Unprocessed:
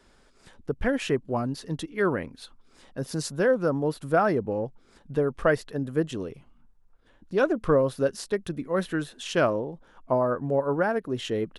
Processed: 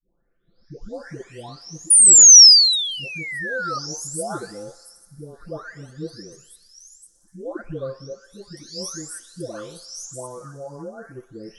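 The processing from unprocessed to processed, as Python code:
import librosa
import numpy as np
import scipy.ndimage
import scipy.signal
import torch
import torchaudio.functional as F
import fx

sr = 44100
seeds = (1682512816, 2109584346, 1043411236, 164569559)

p1 = fx.spec_delay(x, sr, highs='late', ms=934)
p2 = fx.rotary(p1, sr, hz=0.65)
p3 = p2 + fx.echo_thinned(p2, sr, ms=61, feedback_pct=84, hz=410.0, wet_db=-18.5, dry=0)
p4 = fx.spec_paint(p3, sr, seeds[0], shape='fall', start_s=1.9, length_s=1.89, low_hz=1200.0, high_hz=9800.0, level_db=-21.0)
p5 = fx.high_shelf_res(p4, sr, hz=3900.0, db=12.5, q=3.0)
y = F.gain(torch.from_numpy(p5), -4.5).numpy()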